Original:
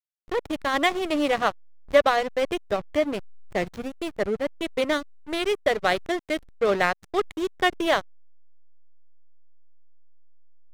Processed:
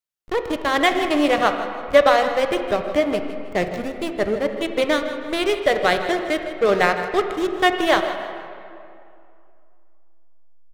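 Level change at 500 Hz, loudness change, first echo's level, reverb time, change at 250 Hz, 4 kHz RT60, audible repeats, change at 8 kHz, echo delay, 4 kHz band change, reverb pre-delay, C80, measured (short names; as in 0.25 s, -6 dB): +5.0 dB, +5.0 dB, -14.0 dB, 2.5 s, +5.5 dB, 1.6 s, 1, +4.0 dB, 0.159 s, +4.5 dB, 13 ms, 7.5 dB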